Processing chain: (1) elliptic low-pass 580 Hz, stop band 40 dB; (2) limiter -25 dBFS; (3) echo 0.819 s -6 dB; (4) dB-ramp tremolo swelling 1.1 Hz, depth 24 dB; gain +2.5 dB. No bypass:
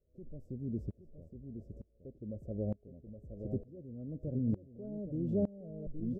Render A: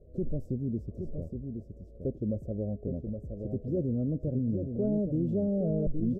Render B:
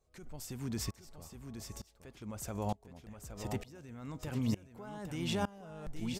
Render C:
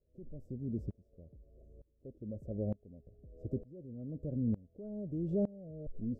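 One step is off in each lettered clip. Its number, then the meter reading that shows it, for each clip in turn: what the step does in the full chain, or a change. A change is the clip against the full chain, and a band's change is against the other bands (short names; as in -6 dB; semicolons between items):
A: 4, momentary loudness spread change -8 LU; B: 1, momentary loudness spread change -3 LU; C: 3, momentary loudness spread change +4 LU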